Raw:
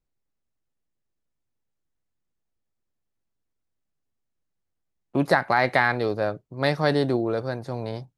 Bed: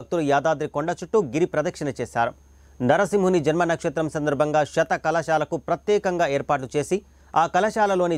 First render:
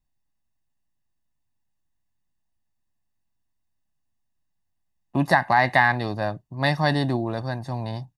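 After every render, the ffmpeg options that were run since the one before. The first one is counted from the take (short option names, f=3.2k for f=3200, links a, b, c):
-af "aecho=1:1:1.1:0.71"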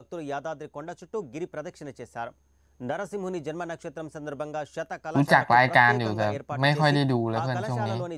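-filter_complex "[1:a]volume=-12.5dB[a];[0:a][a]amix=inputs=2:normalize=0"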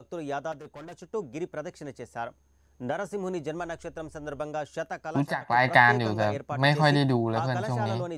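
-filter_complex "[0:a]asettb=1/sr,asplit=3[a][b][c];[a]atrim=end=0.524[d];[b]atrim=start=0.52:end=1.02,asetpts=PTS-STARTPTS,afade=t=in:d=0.004:c=qsin,afade=t=out:st=0.496:d=0.004:c=qsin,asoftclip=type=hard:threshold=-39.5dB[e];[c]atrim=start=1.016[f];[d][e]acrossfade=d=0.004:c1=hsin:c2=qsin[g];[g][f]acrossfade=d=0.004:c1=qsin:c2=hsin,asplit=3[h][i][j];[h]afade=t=out:st=3.58:d=0.02[k];[i]asubboost=boost=8:cutoff=65,afade=t=in:st=3.58:d=0.02,afade=t=out:st=4.41:d=0.02[l];[j]afade=t=in:st=4.41:d=0.02[m];[k][l][m]amix=inputs=3:normalize=0,asplit=3[n][o][p];[n]atrim=end=5.37,asetpts=PTS-STARTPTS,afade=t=out:st=5.05:d=0.32:silence=0.199526[q];[o]atrim=start=5.37:end=5.4,asetpts=PTS-STARTPTS,volume=-14dB[r];[p]atrim=start=5.4,asetpts=PTS-STARTPTS,afade=t=in:d=0.32:silence=0.199526[s];[q][r][s]concat=n=3:v=0:a=1"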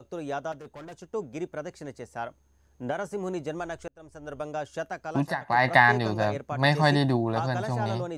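-filter_complex "[0:a]asplit=2[a][b];[a]atrim=end=3.88,asetpts=PTS-STARTPTS,afade=t=out:st=3.876:d=0.004:c=hsin[c];[b]atrim=start=3.88,asetpts=PTS-STARTPTS,afade=t=in:d=0.79:c=qsin[d];[c][d]concat=n=2:v=0:a=1"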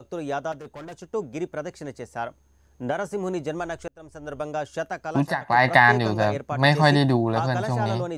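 -af "volume=4dB,alimiter=limit=-3dB:level=0:latency=1"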